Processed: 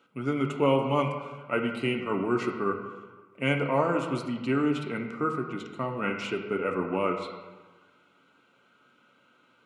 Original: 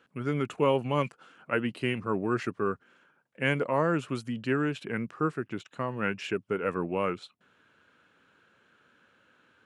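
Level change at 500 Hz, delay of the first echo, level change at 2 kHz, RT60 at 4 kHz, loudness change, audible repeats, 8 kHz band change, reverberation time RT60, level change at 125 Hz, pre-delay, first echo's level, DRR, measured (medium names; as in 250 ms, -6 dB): +1.5 dB, no echo, 0.0 dB, 0.90 s, +1.5 dB, no echo, 0.0 dB, 1.3 s, +0.5 dB, 3 ms, no echo, 1.5 dB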